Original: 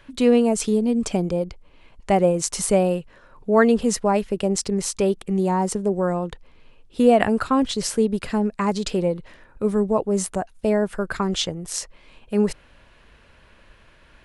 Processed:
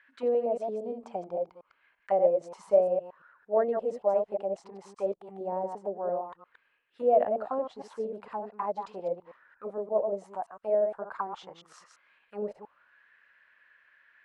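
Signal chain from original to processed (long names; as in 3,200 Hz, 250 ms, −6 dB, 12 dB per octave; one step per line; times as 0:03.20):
delay that plays each chunk backwards 115 ms, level −6 dB
envelope filter 600–1,800 Hz, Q 5.7, down, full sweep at −16 dBFS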